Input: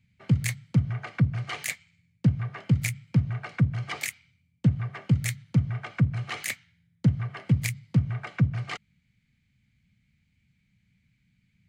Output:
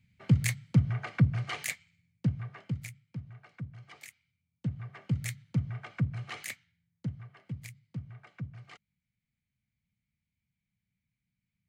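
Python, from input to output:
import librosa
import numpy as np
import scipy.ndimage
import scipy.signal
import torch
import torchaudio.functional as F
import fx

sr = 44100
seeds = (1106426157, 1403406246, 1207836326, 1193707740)

y = fx.gain(x, sr, db=fx.line((1.32, -1.0), (2.59, -9.0), (3.02, -18.0), (3.98, -18.0), (5.22, -7.0), (6.37, -7.0), (7.36, -17.0)))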